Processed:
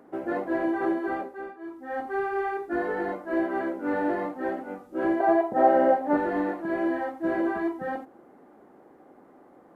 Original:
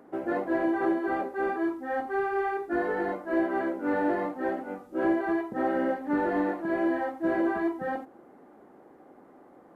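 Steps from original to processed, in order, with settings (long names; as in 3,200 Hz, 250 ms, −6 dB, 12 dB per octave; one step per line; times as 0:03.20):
0:01.07–0:02.06: duck −17 dB, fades 0.49 s
0:05.20–0:06.17: parametric band 680 Hz +14.5 dB 0.87 octaves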